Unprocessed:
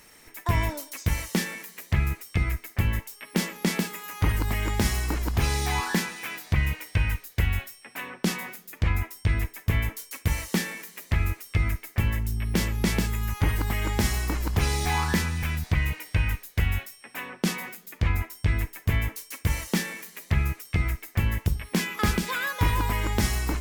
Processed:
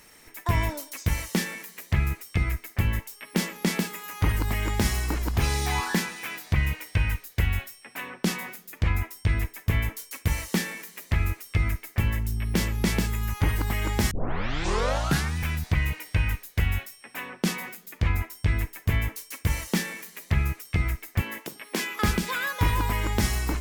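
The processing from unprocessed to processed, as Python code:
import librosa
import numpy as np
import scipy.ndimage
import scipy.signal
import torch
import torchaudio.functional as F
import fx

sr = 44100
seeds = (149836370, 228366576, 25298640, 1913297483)

y = fx.highpass(x, sr, hz=260.0, slope=24, at=(21.21, 22.03))
y = fx.edit(y, sr, fx.tape_start(start_s=14.11, length_s=1.26), tone=tone)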